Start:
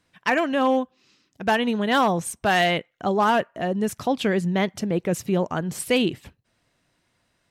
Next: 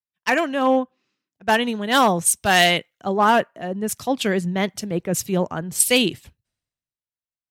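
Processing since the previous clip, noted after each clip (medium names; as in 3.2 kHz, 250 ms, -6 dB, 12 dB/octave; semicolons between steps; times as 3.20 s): treble shelf 4 kHz +8.5 dB; three bands expanded up and down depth 100%; trim +1 dB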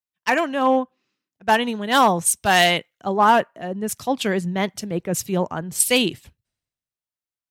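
dynamic bell 930 Hz, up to +4 dB, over -33 dBFS, Q 2.4; trim -1 dB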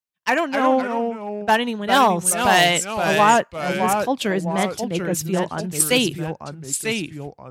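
ever faster or slower copies 221 ms, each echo -2 st, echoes 2, each echo -6 dB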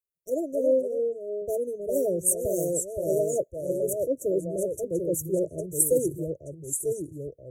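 brick-wall FIR band-stop 680–5500 Hz; static phaser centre 1.1 kHz, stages 8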